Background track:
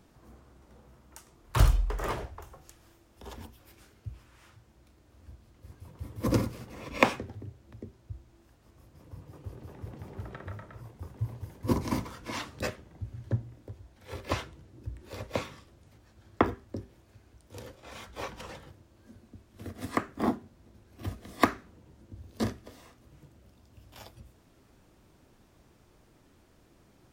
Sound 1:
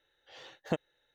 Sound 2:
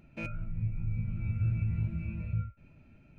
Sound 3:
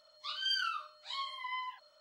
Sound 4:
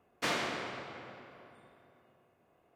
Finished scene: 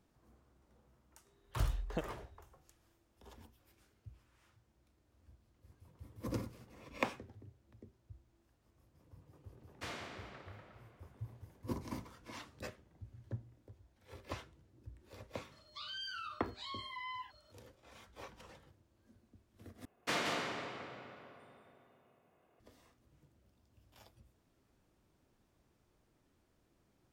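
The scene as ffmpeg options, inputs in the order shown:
-filter_complex "[4:a]asplit=2[a][b];[0:a]volume=-13dB[c];[1:a]aeval=exprs='val(0)+0.000562*sin(2*PI*400*n/s)':c=same[d];[3:a]alimiter=level_in=11dB:limit=-24dB:level=0:latency=1:release=30,volume=-11dB[e];[b]aecho=1:1:175:0.562[f];[c]asplit=2[g][h];[g]atrim=end=19.854[i];[f]atrim=end=2.75,asetpts=PTS-STARTPTS,volume=-3dB[j];[h]atrim=start=22.596[k];[d]atrim=end=1.14,asetpts=PTS-STARTPTS,volume=-7.5dB,afade=t=in:d=0.004:c=hsin,afade=t=out:st=1.136:d=0.004:c=hsin,adelay=1250[l];[a]atrim=end=2.75,asetpts=PTS-STARTPTS,volume=-12.5dB,afade=t=in:d=0.004:c=hsin,afade=t=out:st=2.746:d=0.004:c=hsin,adelay=9590[m];[e]atrim=end=2,asetpts=PTS-STARTPTS,volume=-2.5dB,afade=t=in:d=0.004:c=hsin,afade=t=out:st=1.996:d=0.004:c=hsin,adelay=15520[n];[i][j]acrossfade=d=0.004:c1=hsin:c2=hsin[o];[o][k]acrossfade=d=0.004:c1=hsin:c2=hsin[p];[p][l][m][n]amix=inputs=4:normalize=0"

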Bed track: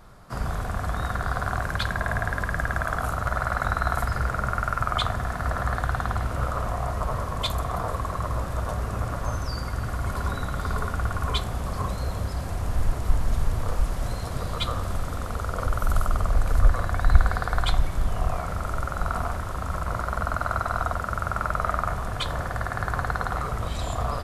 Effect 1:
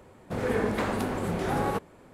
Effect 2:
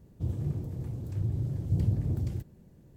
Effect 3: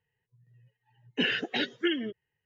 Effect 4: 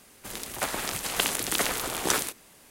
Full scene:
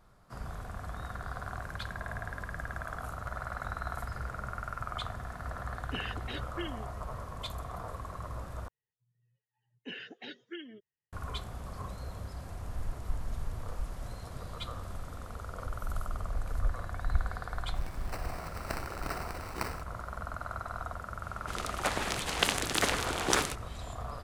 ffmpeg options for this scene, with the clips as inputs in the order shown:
-filter_complex "[3:a]asplit=2[a][b];[4:a]asplit=2[c][d];[0:a]volume=-12.5dB[e];[c]acrusher=samples=13:mix=1:aa=0.000001[f];[d]adynamicsmooth=sensitivity=1.5:basefreq=6.2k[g];[e]asplit=2[h][i];[h]atrim=end=8.684[j];[b]atrim=end=2.45,asetpts=PTS-STARTPTS,volume=-15.5dB[k];[i]atrim=start=11.126[l];[a]atrim=end=2.45,asetpts=PTS-STARTPTS,volume=-11.5dB,afade=t=in:d=0.004:c=hsin,afade=t=out:st=2.446:d=0.004:c=hsin,adelay=4740[m];[f]atrim=end=2.7,asetpts=PTS-STARTPTS,volume=-13dB,afade=t=in:d=0.004:c=hsin,afade=t=out:st=2.696:d=0.004:c=hsin,adelay=17510[n];[g]atrim=end=2.7,asetpts=PTS-STARTPTS,volume=-0.5dB,afade=t=in:d=0.004:c=hsin,afade=t=out:st=2.696:d=0.004:c=hsin,adelay=21230[o];[j][k]acrossfade=d=0.004:c1=hsin:c2=hsin[p];[p][l]acrossfade=d=0.004:c1=hsin:c2=hsin[q];[q][m][n][o]amix=inputs=4:normalize=0"

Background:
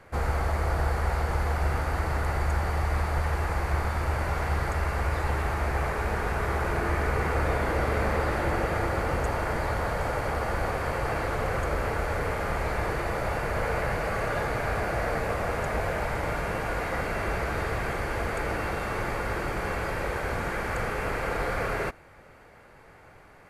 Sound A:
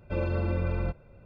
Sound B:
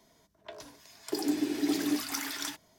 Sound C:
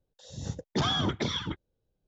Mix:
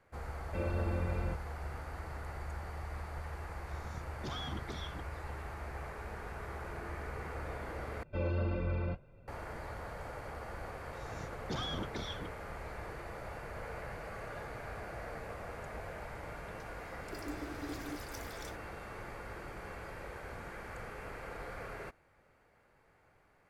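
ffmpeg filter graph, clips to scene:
-filter_complex "[1:a]asplit=2[a][b];[3:a]asplit=2[c][d];[0:a]volume=-15.5dB[e];[b]flanger=delay=5.8:depth=6.5:regen=-38:speed=1.8:shape=triangular[f];[e]asplit=2[g][h];[g]atrim=end=8.034[i];[f]atrim=end=1.25,asetpts=PTS-STARTPTS,volume=-1.5dB[j];[h]atrim=start=9.276[k];[a]atrim=end=1.25,asetpts=PTS-STARTPTS,volume=-6.5dB,afade=t=in:d=0.004:c=hsin,afade=t=out:st=1.246:d=0.004:c=hsin,adelay=430[l];[c]atrim=end=2.07,asetpts=PTS-STARTPTS,volume=-15dB,afade=t=in:d=0.004:c=hsin,afade=t=out:st=2.066:d=0.004:c=hsin,adelay=3480[m];[d]atrim=end=2.07,asetpts=PTS-STARTPTS,volume=-11.5dB,afade=t=in:d=0.004:c=hsin,afade=t=out:st=2.066:d=0.004:c=hsin,adelay=473634S[n];[2:a]atrim=end=2.78,asetpts=PTS-STARTPTS,volume=-15dB,afade=t=in:d=0.004:c=hsin,afade=t=out:st=2.776:d=0.004:c=hsin,adelay=16000[o];[i][j]acrossfade=d=0.004:c1=hsin:c2=hsin[p];[p][k]acrossfade=d=0.004:c1=hsin:c2=hsin[q];[q][l][m][n][o]amix=inputs=5:normalize=0"

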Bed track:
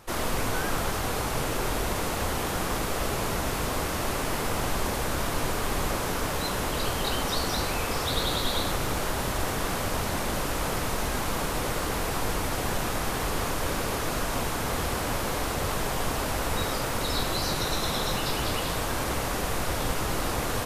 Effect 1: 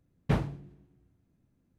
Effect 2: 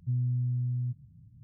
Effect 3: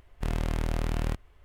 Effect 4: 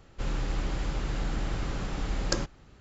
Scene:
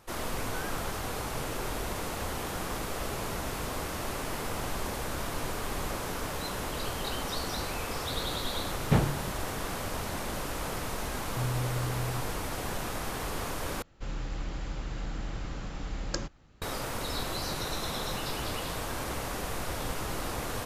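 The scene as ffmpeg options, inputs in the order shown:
-filter_complex "[0:a]volume=-6dB[a];[1:a]dynaudnorm=f=120:g=5:m=8.5dB[b];[4:a]bandreject=f=390:w=12[c];[a]asplit=2[d][e];[d]atrim=end=13.824[f];[c]atrim=end=2.8,asetpts=PTS-STARTPTS,volume=-5dB[g];[e]atrim=start=16.616[h];[b]atrim=end=1.78,asetpts=PTS-STARTPTS,volume=-3dB,afade=t=in:d=0.004:c=hsin,afade=t=out:st=1.776:d=0.004:c=hsin,adelay=8620[i];[2:a]atrim=end=1.43,asetpts=PTS-STARTPTS,volume=-3.5dB,afade=t=in:d=0.004:c=hsin,afade=t=out:st=1.426:d=0.004:c=hsin,adelay=11290[j];[f][g]acrossfade=d=0.004:c1=hsin:c2=hsin[k];[k][h]acrossfade=d=0.004:c1=hsin:c2=hsin[l];[l][i][j]amix=inputs=3:normalize=0"

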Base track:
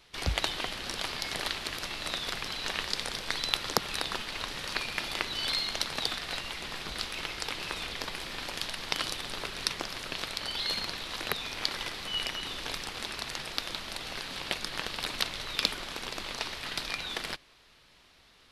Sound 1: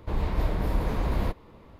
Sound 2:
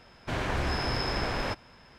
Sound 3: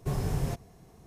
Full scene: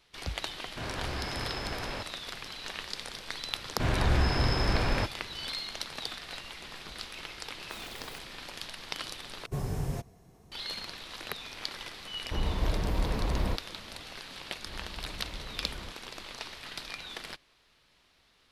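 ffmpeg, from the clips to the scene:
-filter_complex "[2:a]asplit=2[a][b];[3:a]asplit=2[c][d];[1:a]asplit=2[e][f];[0:a]volume=-6dB[g];[b]lowshelf=f=190:g=8[h];[c]aeval=exprs='(mod(31.6*val(0)+1,2)-1)/31.6':c=same[i];[g]asplit=2[j][k];[j]atrim=end=9.464[l];[d]atrim=end=1.06,asetpts=PTS-STARTPTS,volume=-3dB[m];[k]atrim=start=10.516[n];[a]atrim=end=1.98,asetpts=PTS-STARTPTS,volume=-6.5dB,afade=t=in:d=0.004:c=hsin,afade=t=out:st=1.976:d=0.004:c=hsin,adelay=490[o];[h]atrim=end=1.98,asetpts=PTS-STARTPTS,volume=-0.5dB,afade=t=in:d=0.004:c=hsin,afade=t=out:st=1.976:d=0.004:c=hsin,adelay=3520[p];[i]atrim=end=1.06,asetpts=PTS-STARTPTS,volume=-13.5dB,afade=t=in:d=0.004:c=hsin,afade=t=out:st=1.056:d=0.004:c=hsin,adelay=7640[q];[e]atrim=end=1.79,asetpts=PTS-STARTPTS,volume=-3dB,afade=t=in:d=0.004:c=hsin,afade=t=out:st=1.786:d=0.004:c=hsin,adelay=12240[r];[f]atrim=end=1.79,asetpts=PTS-STARTPTS,volume=-17.5dB,afade=t=in:d=0.004:c=hsin,afade=t=out:st=1.786:d=0.004:c=hsin,adelay=14590[s];[l][m]acrossfade=d=0.004:c1=hsin:c2=hsin[t];[t][n]acrossfade=d=0.004:c1=hsin:c2=hsin[u];[u][o][p][q][r][s]amix=inputs=6:normalize=0"

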